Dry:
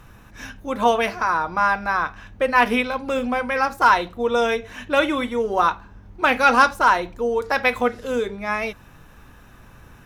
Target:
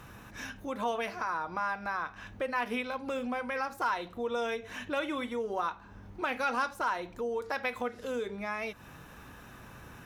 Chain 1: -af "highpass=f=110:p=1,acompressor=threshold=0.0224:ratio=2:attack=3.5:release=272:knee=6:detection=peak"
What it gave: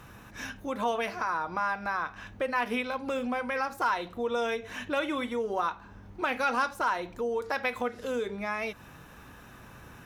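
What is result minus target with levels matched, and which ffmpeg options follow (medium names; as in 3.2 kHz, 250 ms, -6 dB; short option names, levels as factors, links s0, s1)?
compression: peak gain reduction -3 dB
-af "highpass=f=110:p=1,acompressor=threshold=0.0112:ratio=2:attack=3.5:release=272:knee=6:detection=peak"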